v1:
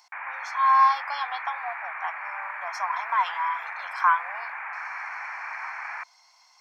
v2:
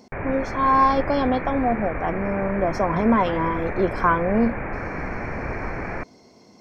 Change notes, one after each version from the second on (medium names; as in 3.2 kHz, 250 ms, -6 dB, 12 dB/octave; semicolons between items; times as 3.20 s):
master: remove steep high-pass 850 Hz 48 dB/octave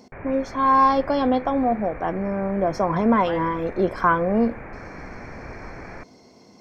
background -8.5 dB; reverb: on, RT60 0.40 s